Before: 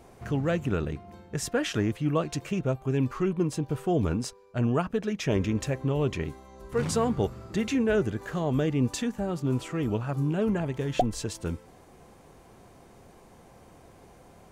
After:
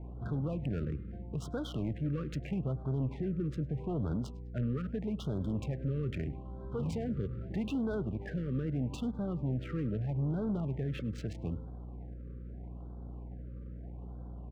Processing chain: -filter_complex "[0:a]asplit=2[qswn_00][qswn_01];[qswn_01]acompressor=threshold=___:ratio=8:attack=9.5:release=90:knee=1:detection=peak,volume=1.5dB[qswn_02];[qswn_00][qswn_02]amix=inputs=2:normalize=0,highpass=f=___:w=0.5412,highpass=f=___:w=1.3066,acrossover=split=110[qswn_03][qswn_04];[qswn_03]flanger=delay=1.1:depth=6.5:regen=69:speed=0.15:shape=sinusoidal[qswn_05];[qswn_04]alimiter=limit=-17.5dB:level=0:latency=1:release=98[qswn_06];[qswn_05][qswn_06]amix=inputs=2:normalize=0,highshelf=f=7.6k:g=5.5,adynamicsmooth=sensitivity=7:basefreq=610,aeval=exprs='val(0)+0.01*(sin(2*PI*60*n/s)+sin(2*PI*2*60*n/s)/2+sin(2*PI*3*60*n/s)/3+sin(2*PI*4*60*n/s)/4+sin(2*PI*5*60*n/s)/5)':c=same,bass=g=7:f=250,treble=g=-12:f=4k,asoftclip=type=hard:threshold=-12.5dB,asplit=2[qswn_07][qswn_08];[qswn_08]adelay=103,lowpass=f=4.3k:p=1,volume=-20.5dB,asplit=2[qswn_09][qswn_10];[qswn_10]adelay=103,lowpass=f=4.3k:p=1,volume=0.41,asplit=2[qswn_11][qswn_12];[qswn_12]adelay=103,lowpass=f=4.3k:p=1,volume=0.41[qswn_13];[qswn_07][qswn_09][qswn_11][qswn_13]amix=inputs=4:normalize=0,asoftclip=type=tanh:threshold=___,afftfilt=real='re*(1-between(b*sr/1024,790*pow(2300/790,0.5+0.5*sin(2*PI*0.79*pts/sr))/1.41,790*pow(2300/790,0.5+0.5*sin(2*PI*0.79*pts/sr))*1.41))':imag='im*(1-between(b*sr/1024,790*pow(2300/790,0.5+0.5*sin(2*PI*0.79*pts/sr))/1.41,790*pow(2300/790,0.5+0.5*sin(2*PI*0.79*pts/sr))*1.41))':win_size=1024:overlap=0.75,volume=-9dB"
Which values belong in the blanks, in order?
-39dB, 59, 59, -18dB